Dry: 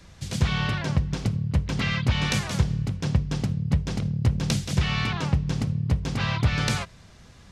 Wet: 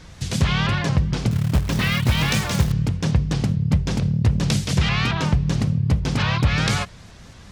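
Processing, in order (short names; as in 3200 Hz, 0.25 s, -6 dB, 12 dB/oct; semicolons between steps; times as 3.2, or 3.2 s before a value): in parallel at +1 dB: limiter -20 dBFS, peak gain reduction 10.5 dB; 1.31–2.72 on the sum: short-mantissa float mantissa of 2-bit; shaped vibrato saw up 4.5 Hz, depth 160 cents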